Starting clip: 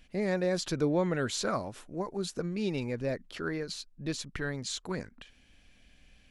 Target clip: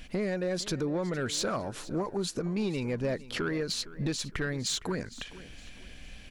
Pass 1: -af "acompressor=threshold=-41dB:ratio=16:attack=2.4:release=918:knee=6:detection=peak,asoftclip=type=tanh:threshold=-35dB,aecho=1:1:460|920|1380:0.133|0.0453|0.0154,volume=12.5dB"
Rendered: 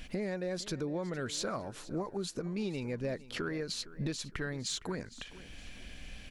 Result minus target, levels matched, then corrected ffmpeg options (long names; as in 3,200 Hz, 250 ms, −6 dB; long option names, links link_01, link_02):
downward compressor: peak gain reduction +6 dB
-af "acompressor=threshold=-34.5dB:ratio=16:attack=2.4:release=918:knee=6:detection=peak,asoftclip=type=tanh:threshold=-35dB,aecho=1:1:460|920|1380:0.133|0.0453|0.0154,volume=12.5dB"